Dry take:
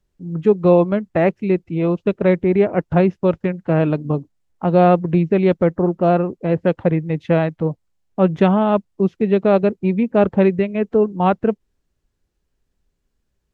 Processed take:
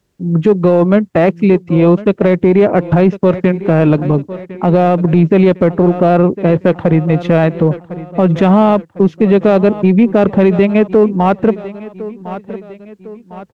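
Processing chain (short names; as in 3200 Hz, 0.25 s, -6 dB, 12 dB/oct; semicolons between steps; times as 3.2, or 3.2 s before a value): HPF 91 Hz 12 dB/oct; in parallel at -8 dB: hard clip -15 dBFS, distortion -8 dB; on the sum: feedback echo 1.054 s, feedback 47%, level -20.5 dB; maximiser +10.5 dB; gain -1 dB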